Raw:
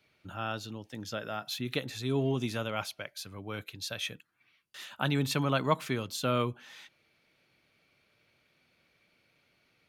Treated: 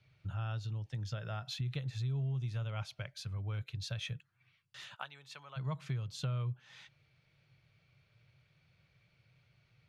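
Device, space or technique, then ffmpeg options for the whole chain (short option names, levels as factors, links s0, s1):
jukebox: -filter_complex "[0:a]lowpass=6800,lowshelf=f=180:t=q:w=3:g=11,acompressor=threshold=0.0251:ratio=4,asplit=3[s0][s1][s2];[s0]afade=t=out:st=4.94:d=0.02[s3];[s1]highpass=710,afade=t=in:st=4.94:d=0.02,afade=t=out:st=5.56:d=0.02[s4];[s2]afade=t=in:st=5.56:d=0.02[s5];[s3][s4][s5]amix=inputs=3:normalize=0,volume=0.631"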